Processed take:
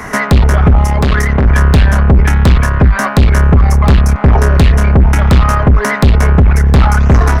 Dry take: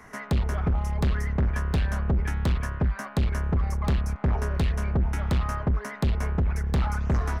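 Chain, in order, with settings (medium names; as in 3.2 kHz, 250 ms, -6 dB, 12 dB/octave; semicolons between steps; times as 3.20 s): single-diode clipper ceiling -23.5 dBFS; 0.85–1.45 s: bass shelf 180 Hz -6.5 dB; loudness maximiser +25 dB; trim -1 dB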